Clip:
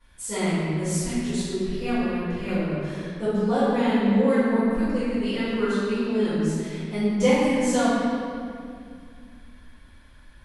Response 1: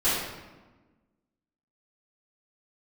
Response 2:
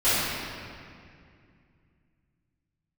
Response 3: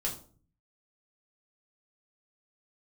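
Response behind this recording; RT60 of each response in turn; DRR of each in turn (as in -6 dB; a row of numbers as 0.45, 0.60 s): 2; 1.2, 2.3, 0.45 s; -15.5, -17.5, -3.0 dB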